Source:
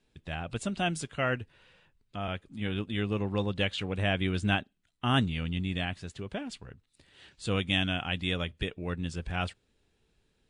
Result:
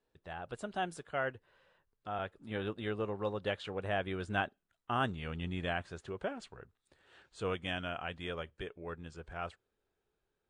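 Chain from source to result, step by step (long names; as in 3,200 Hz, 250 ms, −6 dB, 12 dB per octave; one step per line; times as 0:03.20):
source passing by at 0:04.33, 15 m/s, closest 21 metres
flat-topped bell 780 Hz +9.5 dB 2.5 octaves
speech leveller within 4 dB 0.5 s
level −7.5 dB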